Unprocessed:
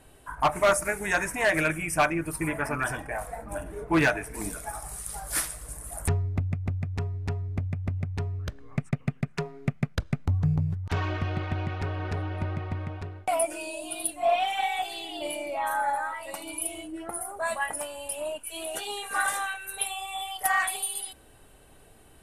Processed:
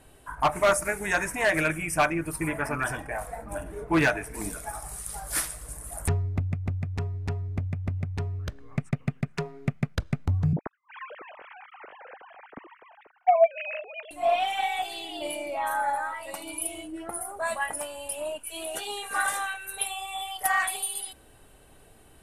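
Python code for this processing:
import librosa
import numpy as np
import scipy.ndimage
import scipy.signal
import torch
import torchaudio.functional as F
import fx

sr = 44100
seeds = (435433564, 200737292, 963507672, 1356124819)

y = fx.sine_speech(x, sr, at=(10.53, 14.11))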